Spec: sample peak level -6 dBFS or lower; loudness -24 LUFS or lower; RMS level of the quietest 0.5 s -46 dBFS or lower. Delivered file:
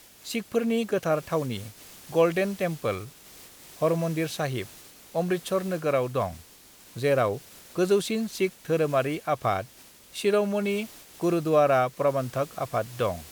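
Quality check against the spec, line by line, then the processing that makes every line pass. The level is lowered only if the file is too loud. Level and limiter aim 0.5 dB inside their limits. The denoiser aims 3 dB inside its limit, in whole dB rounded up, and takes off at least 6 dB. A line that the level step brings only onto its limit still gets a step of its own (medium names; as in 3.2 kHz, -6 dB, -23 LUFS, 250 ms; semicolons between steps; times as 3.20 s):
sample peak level -10.0 dBFS: pass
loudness -27.0 LUFS: pass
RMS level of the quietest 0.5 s -52 dBFS: pass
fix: none needed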